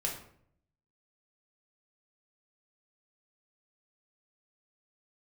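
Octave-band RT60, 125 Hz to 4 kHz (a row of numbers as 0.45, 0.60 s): 0.95, 0.80, 0.70, 0.55, 0.50, 0.40 s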